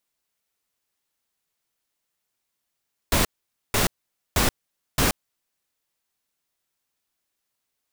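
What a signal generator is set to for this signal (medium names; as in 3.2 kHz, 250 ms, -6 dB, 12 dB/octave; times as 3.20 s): noise bursts pink, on 0.13 s, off 0.49 s, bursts 4, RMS -20 dBFS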